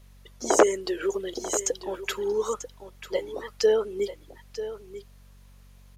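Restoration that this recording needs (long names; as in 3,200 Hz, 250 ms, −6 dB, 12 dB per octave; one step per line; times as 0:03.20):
hum removal 47.1 Hz, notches 5
echo removal 941 ms −12.5 dB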